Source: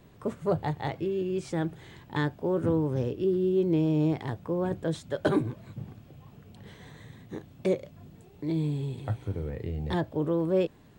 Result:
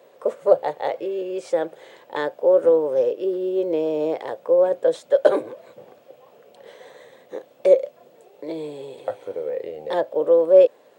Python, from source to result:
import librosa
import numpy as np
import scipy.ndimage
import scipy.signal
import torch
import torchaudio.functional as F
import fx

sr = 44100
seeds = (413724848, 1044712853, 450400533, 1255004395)

y = fx.highpass_res(x, sr, hz=530.0, q=6.2)
y = y * 10.0 ** (2.5 / 20.0)